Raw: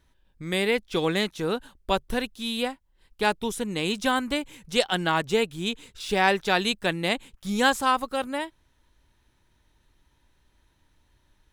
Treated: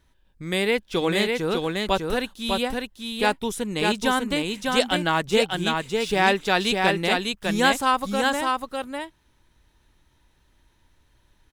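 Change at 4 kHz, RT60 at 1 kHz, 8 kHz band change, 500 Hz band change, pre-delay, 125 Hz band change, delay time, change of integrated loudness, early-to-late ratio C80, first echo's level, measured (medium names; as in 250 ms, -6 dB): +3.0 dB, no reverb, +3.0 dB, +3.0 dB, no reverb, +3.0 dB, 601 ms, +2.5 dB, no reverb, -3.5 dB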